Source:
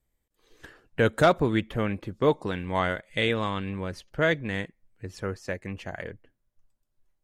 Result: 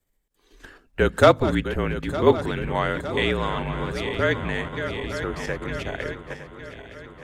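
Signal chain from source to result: regenerating reverse delay 0.455 s, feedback 76%, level -10 dB; in parallel at +1.5 dB: level quantiser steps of 19 dB; on the sum: frequency shift -43 Hz; de-hum 51.41 Hz, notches 5

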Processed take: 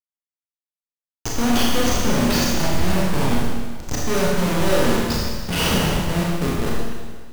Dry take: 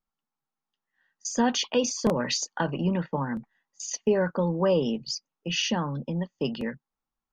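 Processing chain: Schmitt trigger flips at -26.5 dBFS; sample leveller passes 5; Schroeder reverb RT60 1.6 s, combs from 26 ms, DRR -4.5 dB

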